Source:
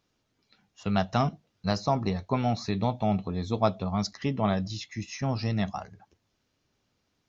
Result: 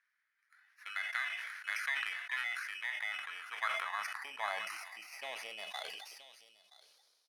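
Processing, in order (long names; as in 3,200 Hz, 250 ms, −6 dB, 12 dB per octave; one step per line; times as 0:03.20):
samples in bit-reversed order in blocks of 16 samples
downward compressor, threshold −28 dBFS, peak gain reduction 10 dB
high-pass filter sweep 1,800 Hz → 520 Hz, 0:02.87–0:05.49
single-tap delay 974 ms −20 dB
band-pass filter sweep 1,700 Hz → 4,200 Hz, 0:04.33–0:06.90
level that may fall only so fast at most 32 dB per second
level +4.5 dB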